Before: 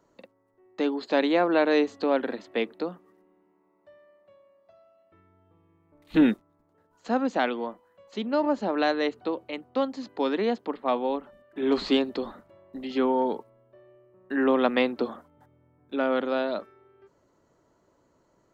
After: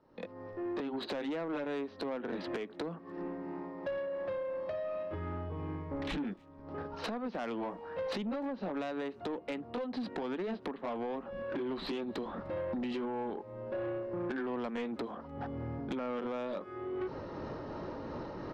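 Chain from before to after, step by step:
pitch shift by two crossfaded delay taps −1 semitone
camcorder AGC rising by 66 dB per second
elliptic low-pass filter 5,200 Hz
high-shelf EQ 2,900 Hz −8 dB
downward compressor 4 to 1, threshold −29 dBFS, peak gain reduction 10.5 dB
soft clipping −29 dBFS, distortion −13 dB
far-end echo of a speakerphone 300 ms, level −25 dB
level −2 dB

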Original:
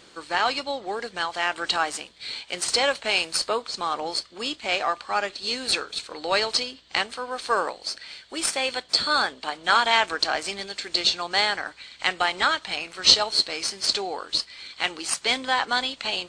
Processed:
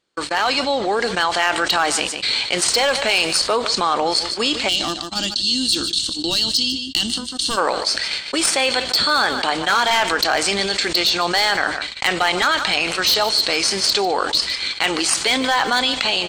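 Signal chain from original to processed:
hard clipping −15 dBFS, distortion −13 dB
gain on a spectral selection 0:04.69–0:07.58, 360–2,700 Hz −21 dB
noise gate −39 dBFS, range −55 dB
automatic gain control gain up to 10 dB
on a send: single-tap delay 149 ms −21.5 dB
on the sum: envelope flattener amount 70%
level −8 dB

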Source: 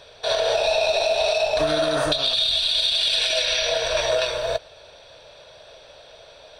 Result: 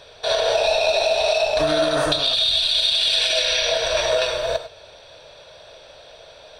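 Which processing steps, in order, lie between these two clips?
reverb whose tail is shaped and stops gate 120 ms rising, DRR 10 dB
level +1.5 dB

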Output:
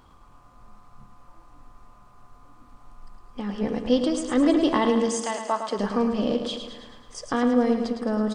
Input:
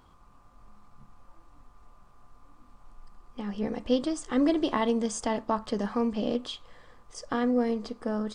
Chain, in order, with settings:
0:05.08–0:05.78: high-pass filter 1,300 Hz → 300 Hz 12 dB per octave
repeating echo 108 ms, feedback 58%, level −7.5 dB
level +4 dB

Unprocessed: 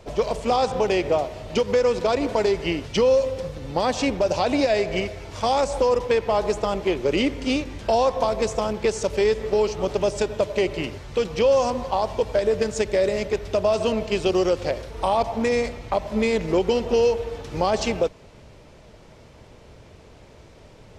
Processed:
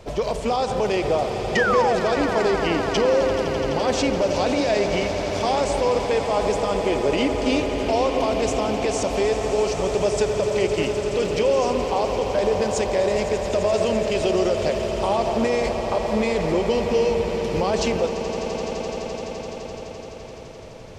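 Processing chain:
brickwall limiter −17 dBFS, peak gain reduction 7 dB
sound drawn into the spectrogram fall, 0:01.55–0:01.96, 630–2,000 Hz −25 dBFS
echo that builds up and dies away 85 ms, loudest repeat 8, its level −14 dB
level +3 dB

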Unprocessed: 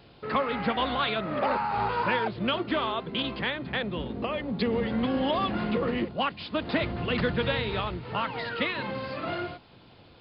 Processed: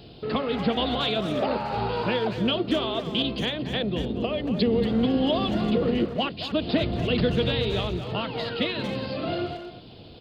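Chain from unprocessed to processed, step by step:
flat-topped bell 1,400 Hz −10.5 dB
notch filter 550 Hz, Q 12
in parallel at −3 dB: downward compressor, threshold −43 dBFS, peak gain reduction 18.5 dB
on the sum: far-end echo of a speakerphone 230 ms, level −8 dB
level +4 dB

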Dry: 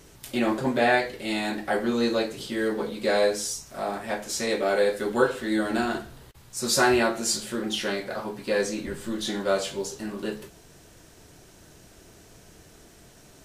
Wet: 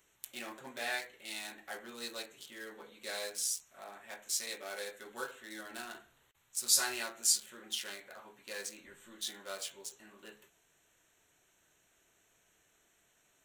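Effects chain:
adaptive Wiener filter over 9 samples
first-order pre-emphasis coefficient 0.97

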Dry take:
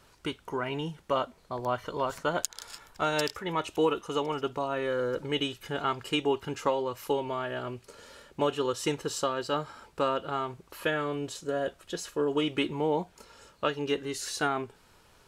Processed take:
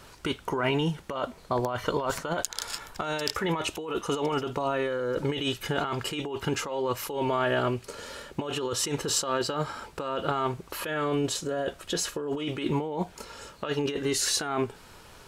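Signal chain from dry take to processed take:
compressor whose output falls as the input rises −34 dBFS, ratio −1
level +5.5 dB

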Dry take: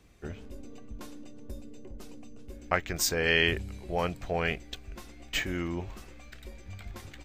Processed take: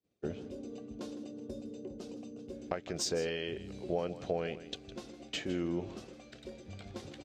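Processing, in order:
downward expander −45 dBFS
band-pass filter 150–5,200 Hz
downward compressor 6 to 1, threshold −34 dBFS, peak gain reduction 14 dB
octave-band graphic EQ 500/1,000/2,000 Hz +4/−7/−10 dB
single-tap delay 159 ms −14.5 dB
level +4 dB

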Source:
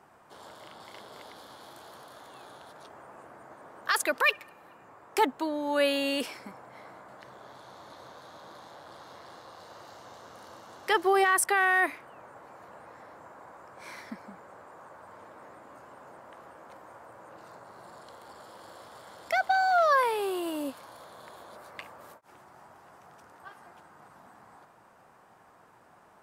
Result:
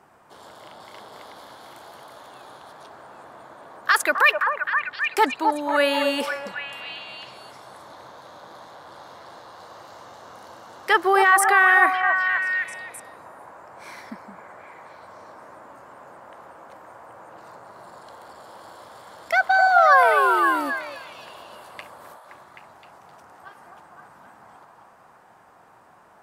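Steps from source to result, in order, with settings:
dynamic equaliser 1,500 Hz, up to +7 dB, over −41 dBFS, Q 1.1
echo through a band-pass that steps 260 ms, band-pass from 790 Hz, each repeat 0.7 octaves, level −1 dB
level +3 dB

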